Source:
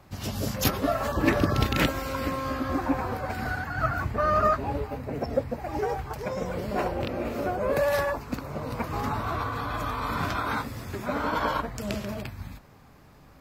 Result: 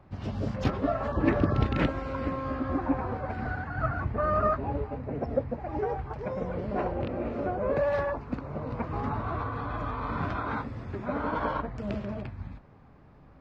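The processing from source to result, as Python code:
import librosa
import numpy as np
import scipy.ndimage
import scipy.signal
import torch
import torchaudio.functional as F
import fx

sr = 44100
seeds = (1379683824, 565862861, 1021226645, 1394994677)

y = fx.spacing_loss(x, sr, db_at_10k=34)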